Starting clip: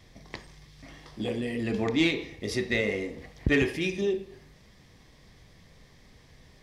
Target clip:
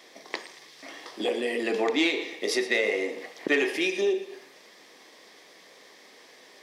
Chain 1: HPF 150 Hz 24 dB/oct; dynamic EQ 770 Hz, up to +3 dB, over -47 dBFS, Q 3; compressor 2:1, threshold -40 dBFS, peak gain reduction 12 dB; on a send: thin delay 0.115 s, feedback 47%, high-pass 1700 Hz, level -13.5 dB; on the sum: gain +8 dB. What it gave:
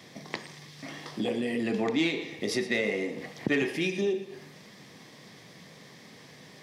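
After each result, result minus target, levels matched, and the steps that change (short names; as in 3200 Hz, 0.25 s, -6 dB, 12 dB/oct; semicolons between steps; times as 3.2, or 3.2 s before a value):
125 Hz band +18.0 dB; compressor: peak gain reduction +4.5 dB
change: HPF 330 Hz 24 dB/oct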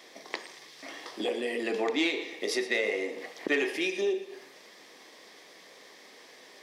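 compressor: peak gain reduction +3.5 dB
change: compressor 2:1, threshold -33 dBFS, peak gain reduction 7.5 dB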